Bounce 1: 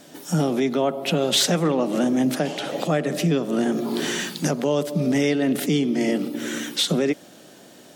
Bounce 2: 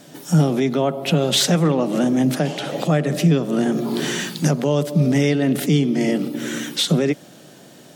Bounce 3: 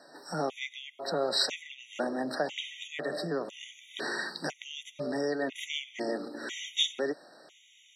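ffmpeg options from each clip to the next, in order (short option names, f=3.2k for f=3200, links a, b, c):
-af "equalizer=f=140:t=o:w=0.65:g=8.5,volume=1.5dB"
-af "highpass=580,lowpass=5.2k,afftfilt=real='re*gt(sin(2*PI*1*pts/sr)*(1-2*mod(floor(b*sr/1024/1900),2)),0)':imag='im*gt(sin(2*PI*1*pts/sr)*(1-2*mod(floor(b*sr/1024/1900),2)),0)':win_size=1024:overlap=0.75,volume=-3.5dB"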